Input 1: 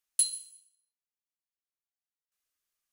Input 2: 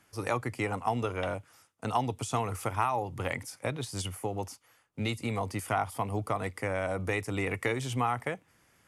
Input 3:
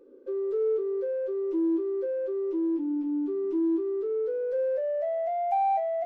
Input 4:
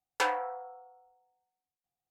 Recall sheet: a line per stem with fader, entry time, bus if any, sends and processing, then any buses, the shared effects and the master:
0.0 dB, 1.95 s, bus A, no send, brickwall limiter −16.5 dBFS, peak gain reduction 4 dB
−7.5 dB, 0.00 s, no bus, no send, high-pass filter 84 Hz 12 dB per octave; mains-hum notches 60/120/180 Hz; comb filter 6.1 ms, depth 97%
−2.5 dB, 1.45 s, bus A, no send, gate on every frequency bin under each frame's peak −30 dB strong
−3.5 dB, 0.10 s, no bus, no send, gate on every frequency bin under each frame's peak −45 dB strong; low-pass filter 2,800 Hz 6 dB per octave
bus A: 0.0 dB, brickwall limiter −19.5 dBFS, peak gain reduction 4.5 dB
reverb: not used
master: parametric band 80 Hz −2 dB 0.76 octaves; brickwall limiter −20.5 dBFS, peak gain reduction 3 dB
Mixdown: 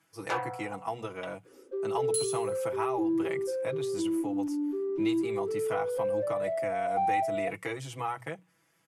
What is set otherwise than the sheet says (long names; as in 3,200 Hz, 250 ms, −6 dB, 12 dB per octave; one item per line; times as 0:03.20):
stem 3: missing gate on every frequency bin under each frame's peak −30 dB strong
master: missing brickwall limiter −20.5 dBFS, peak gain reduction 3 dB